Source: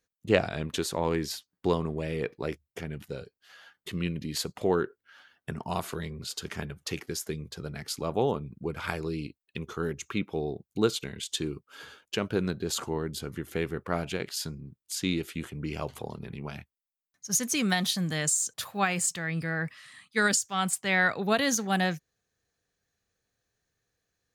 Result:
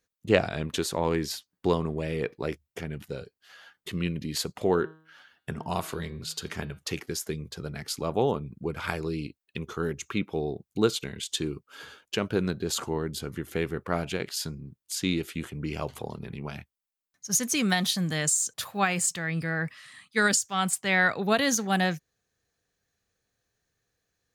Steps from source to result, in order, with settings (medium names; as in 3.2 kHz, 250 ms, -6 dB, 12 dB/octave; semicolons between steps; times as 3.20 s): 4.62–6.79 s: de-hum 158.4 Hz, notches 30; trim +1.5 dB